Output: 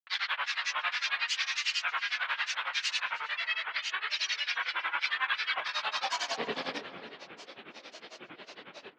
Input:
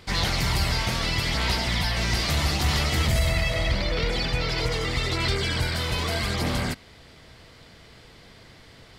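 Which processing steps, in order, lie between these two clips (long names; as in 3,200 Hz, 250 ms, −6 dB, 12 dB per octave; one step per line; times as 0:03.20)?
reverb whose tail is shaped and stops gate 420 ms falling, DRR 7.5 dB
downward compressor 6 to 1, threshold −31 dBFS, peak gain reduction 13 dB
low-shelf EQ 260 Hz −4.5 dB
high-pass filter sweep 1,500 Hz → 380 Hz, 0:05.34–0:06.58
loudspeaker in its box 120–4,300 Hz, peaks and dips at 190 Hz +5 dB, 370 Hz −8 dB, 590 Hz −5 dB, 3,000 Hz +4 dB
granular cloud, grains 11 per second, pitch spread up and down by 7 semitones
on a send: tape delay 310 ms, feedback 56%, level −12.5 dB, low-pass 1,700 Hz
on the sum: level +5.5 dB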